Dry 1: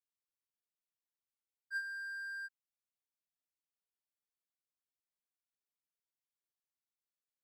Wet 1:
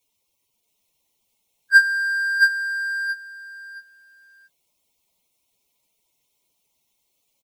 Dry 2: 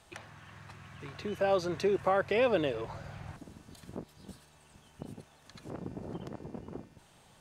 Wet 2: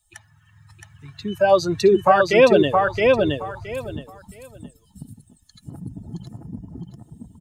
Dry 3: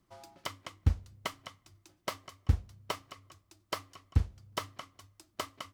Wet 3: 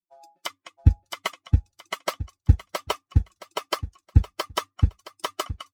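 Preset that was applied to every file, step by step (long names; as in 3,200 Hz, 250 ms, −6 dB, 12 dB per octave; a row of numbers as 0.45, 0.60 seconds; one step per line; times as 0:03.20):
spectral dynamics exaggerated over time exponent 2
on a send: repeating echo 669 ms, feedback 21%, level −3 dB
on the sum: normalise the peak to −2 dBFS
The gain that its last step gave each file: +28.0, +16.0, +11.5 decibels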